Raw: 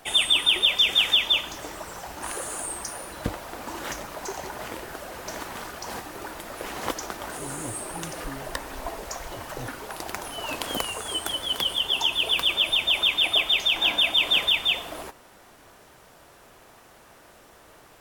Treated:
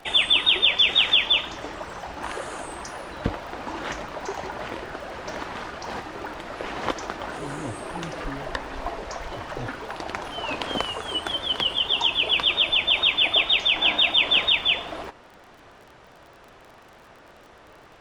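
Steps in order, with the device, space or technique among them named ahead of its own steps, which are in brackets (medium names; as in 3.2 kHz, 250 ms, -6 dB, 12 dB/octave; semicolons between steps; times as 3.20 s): lo-fi chain (low-pass 4 kHz 12 dB/octave; wow and flutter; crackle 39 per s -42 dBFS); trim +3 dB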